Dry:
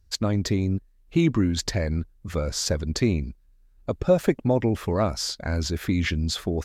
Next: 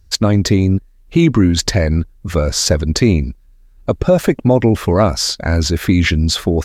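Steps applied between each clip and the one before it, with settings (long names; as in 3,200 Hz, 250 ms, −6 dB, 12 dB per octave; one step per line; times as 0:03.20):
boost into a limiter +12 dB
level −1 dB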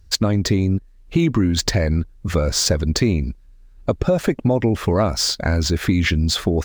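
running median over 3 samples
downward compressor 2.5 to 1, threshold −16 dBFS, peak gain reduction 7 dB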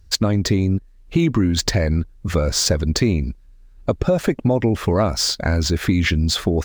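no processing that can be heard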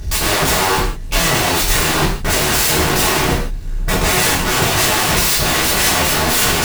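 power curve on the samples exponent 0.5
wrap-around overflow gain 17.5 dB
reverb whose tail is shaped and stops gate 200 ms falling, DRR −7.5 dB
level −1 dB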